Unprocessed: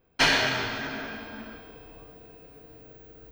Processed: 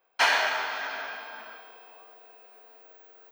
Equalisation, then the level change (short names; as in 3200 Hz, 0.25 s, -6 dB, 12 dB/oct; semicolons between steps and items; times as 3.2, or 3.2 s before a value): dynamic EQ 4300 Hz, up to -5 dB, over -37 dBFS, Q 0.79; resonant high-pass 810 Hz, resonance Q 1.5; 0.0 dB